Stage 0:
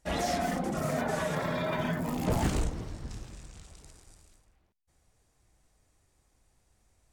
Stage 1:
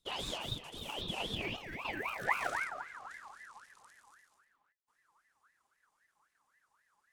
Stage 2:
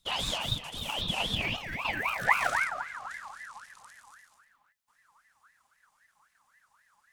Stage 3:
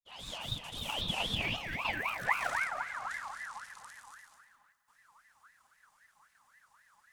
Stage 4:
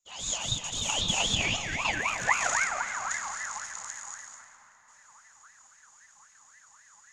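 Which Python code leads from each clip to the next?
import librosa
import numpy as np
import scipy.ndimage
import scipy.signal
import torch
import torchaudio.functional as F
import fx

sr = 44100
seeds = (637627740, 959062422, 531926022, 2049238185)

y1 = fx.filter_sweep_highpass(x, sr, from_hz=1800.0, to_hz=110.0, start_s=1.23, end_s=3.47, q=6.5)
y1 = fx.spec_box(y1, sr, start_s=1.56, length_s=0.29, low_hz=770.0, high_hz=4100.0, gain_db=-11)
y1 = fx.ring_lfo(y1, sr, carrier_hz=1400.0, swing_pct=35, hz=3.8)
y1 = y1 * 10.0 ** (-7.0 / 20.0)
y2 = fx.peak_eq(y1, sr, hz=380.0, db=-11.5, octaves=0.86)
y2 = y2 * 10.0 ** (8.5 / 20.0)
y3 = fx.fade_in_head(y2, sr, length_s=1.26)
y3 = fx.rider(y3, sr, range_db=4, speed_s=0.5)
y3 = fx.echo_feedback(y3, sr, ms=204, feedback_pct=48, wet_db=-17.0)
y3 = y3 * 10.0 ** (-2.5 / 20.0)
y4 = fx.lowpass_res(y3, sr, hz=6800.0, q=15.0)
y4 = fx.rev_freeverb(y4, sr, rt60_s=4.7, hf_ratio=0.7, predelay_ms=70, drr_db=12.5)
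y4 = y4 * 10.0 ** (4.5 / 20.0)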